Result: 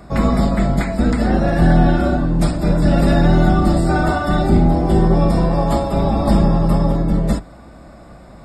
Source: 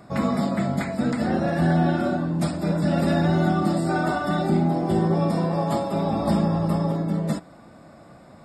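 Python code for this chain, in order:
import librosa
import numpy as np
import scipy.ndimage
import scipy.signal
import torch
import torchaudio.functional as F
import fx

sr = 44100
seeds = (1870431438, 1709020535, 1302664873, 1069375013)

y = fx.octave_divider(x, sr, octaves=2, level_db=1.0)
y = y * 10.0 ** (5.5 / 20.0)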